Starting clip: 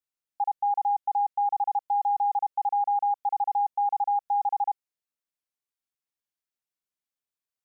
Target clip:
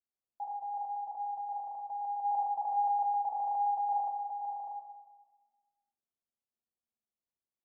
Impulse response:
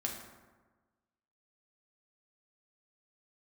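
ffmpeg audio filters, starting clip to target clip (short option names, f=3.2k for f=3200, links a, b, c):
-filter_complex "[0:a]lowpass=f=1k:w=0.5412,lowpass=f=1k:w=1.3066,alimiter=level_in=5dB:limit=-24dB:level=0:latency=1:release=41,volume=-5dB,asplit=3[a][b][c];[a]afade=t=out:st=2.23:d=0.02[d];[b]acontrast=73,afade=t=in:st=2.23:d=0.02,afade=t=out:st=4.08:d=0.02[e];[c]afade=t=in:st=4.08:d=0.02[f];[d][e][f]amix=inputs=3:normalize=0[g];[1:a]atrim=start_sample=2205[h];[g][h]afir=irnorm=-1:irlink=0,volume=-3.5dB"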